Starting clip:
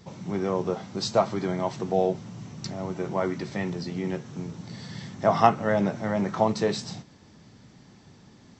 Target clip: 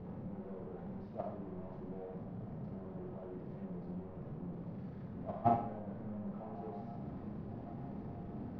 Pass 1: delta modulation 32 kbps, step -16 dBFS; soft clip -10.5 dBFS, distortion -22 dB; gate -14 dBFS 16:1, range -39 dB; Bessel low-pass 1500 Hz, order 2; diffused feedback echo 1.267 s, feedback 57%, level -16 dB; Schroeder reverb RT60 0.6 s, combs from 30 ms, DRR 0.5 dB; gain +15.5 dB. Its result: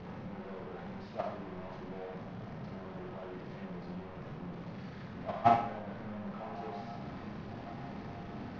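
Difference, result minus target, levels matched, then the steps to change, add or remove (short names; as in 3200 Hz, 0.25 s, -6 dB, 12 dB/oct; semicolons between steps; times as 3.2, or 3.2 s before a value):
2000 Hz band +11.0 dB
change: Bessel low-pass 490 Hz, order 2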